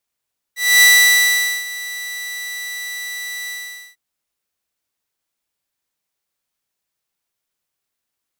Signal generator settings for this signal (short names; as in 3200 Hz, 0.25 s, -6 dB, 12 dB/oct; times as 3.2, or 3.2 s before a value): ADSR saw 1970 Hz, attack 0.257 s, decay 0.819 s, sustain -19 dB, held 2.93 s, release 0.467 s -4 dBFS